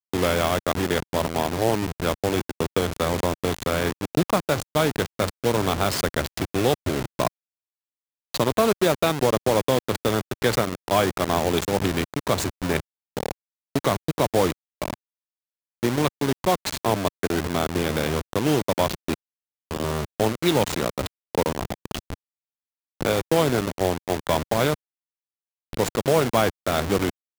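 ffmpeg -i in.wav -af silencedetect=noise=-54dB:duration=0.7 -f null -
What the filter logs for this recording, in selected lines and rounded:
silence_start: 7.28
silence_end: 8.34 | silence_duration: 1.06
silence_start: 14.94
silence_end: 15.83 | silence_duration: 0.89
silence_start: 22.14
silence_end: 23.01 | silence_duration: 0.86
silence_start: 24.75
silence_end: 25.73 | silence_duration: 0.99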